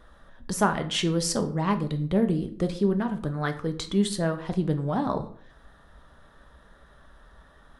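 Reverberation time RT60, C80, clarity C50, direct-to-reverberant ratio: 0.50 s, 17.5 dB, 13.5 dB, 6.5 dB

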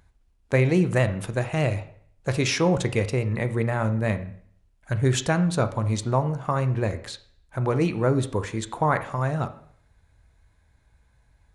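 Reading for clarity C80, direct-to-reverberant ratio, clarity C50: 17.5 dB, 9.5 dB, 14.0 dB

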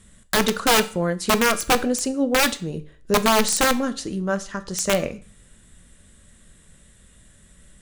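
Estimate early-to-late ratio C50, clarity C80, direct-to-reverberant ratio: 17.5 dB, 21.0 dB, 10.5 dB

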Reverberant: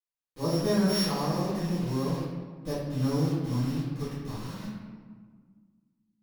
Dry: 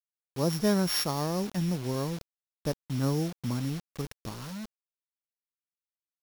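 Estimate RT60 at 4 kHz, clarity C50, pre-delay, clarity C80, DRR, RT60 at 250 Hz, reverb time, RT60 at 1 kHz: 0.90 s, -1.0 dB, 4 ms, 1.5 dB, -14.0 dB, 2.4 s, 1.6 s, 1.6 s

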